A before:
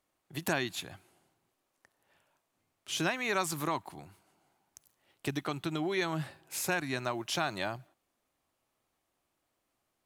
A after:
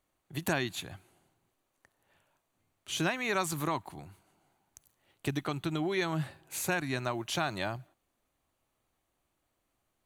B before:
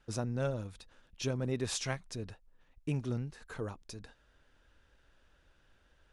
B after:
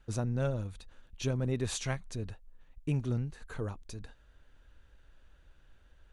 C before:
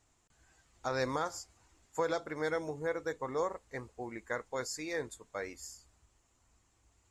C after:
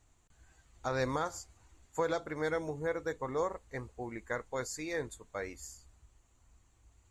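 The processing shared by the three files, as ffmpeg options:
-af "lowshelf=frequency=100:gain=10.5,bandreject=frequency=5200:width=8.4"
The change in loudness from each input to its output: +0.5, +2.0, +0.5 LU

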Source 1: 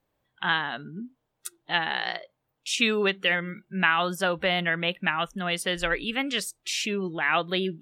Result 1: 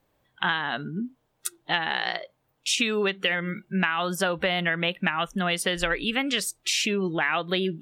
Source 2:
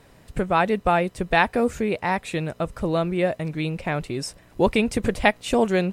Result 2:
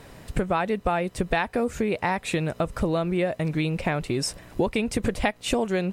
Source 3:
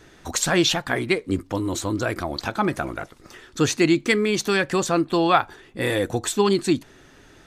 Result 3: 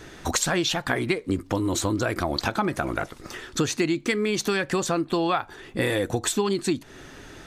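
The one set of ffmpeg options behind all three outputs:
-af "acompressor=threshold=-28dB:ratio=6,volume=6.5dB"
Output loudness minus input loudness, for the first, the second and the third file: 0.0, −3.0, −3.0 LU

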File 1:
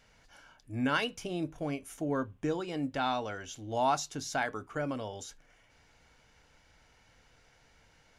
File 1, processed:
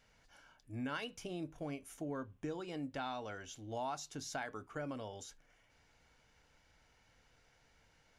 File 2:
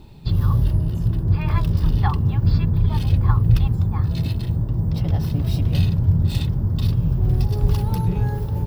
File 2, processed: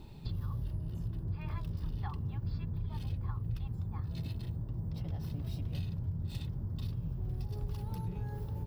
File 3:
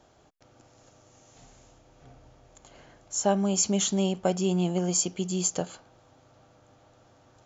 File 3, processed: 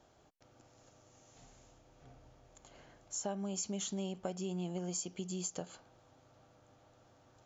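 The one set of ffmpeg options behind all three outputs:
-af "acompressor=threshold=-32dB:ratio=3,volume=-6dB"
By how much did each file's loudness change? −9.5, −18.0, −13.0 LU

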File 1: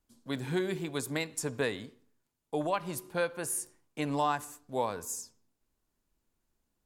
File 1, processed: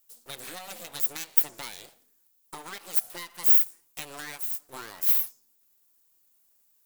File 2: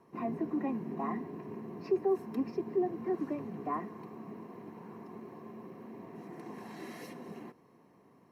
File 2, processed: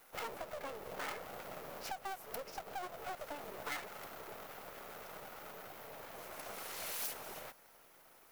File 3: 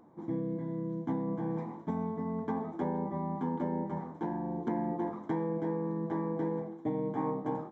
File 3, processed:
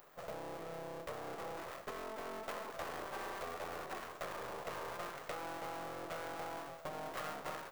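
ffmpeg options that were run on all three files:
-af "acompressor=threshold=-37dB:ratio=5,aeval=exprs='abs(val(0))':channel_layout=same,aemphasis=mode=production:type=riaa,volume=3dB"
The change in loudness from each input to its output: +11.0, −7.0, −9.5 LU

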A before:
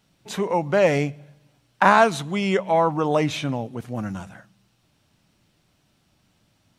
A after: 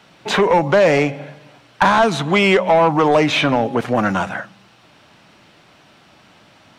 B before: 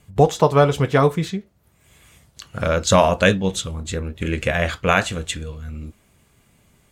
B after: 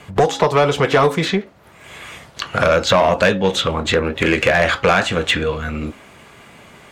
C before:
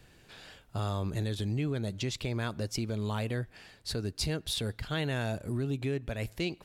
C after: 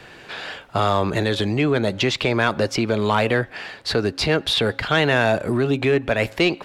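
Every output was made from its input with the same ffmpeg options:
-filter_complex "[0:a]highshelf=frequency=4200:gain=-10.5,bandreject=frequency=273.3:width_type=h:width=4,bandreject=frequency=546.6:width_type=h:width=4,bandreject=frequency=819.9:width_type=h:width=4,acrossover=split=310|4300[link_01][link_02][link_03];[link_01]acompressor=threshold=-31dB:ratio=4[link_04];[link_02]acompressor=threshold=-31dB:ratio=4[link_05];[link_03]acompressor=threshold=-50dB:ratio=4[link_06];[link_04][link_05][link_06]amix=inputs=3:normalize=0,asplit=2[link_07][link_08];[link_08]highpass=frequency=720:poles=1,volume=23dB,asoftclip=type=tanh:threshold=-8dB[link_09];[link_07][link_09]amix=inputs=2:normalize=0,lowpass=frequency=3900:poles=1,volume=-6dB,volume=6dB"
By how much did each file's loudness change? +6.0, +3.0, +13.5 LU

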